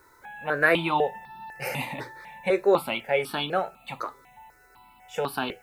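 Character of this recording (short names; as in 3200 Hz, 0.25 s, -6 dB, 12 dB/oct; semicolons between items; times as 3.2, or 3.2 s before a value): a quantiser's noise floor 12-bit, dither triangular; notches that jump at a steady rate 4 Hz 750–2000 Hz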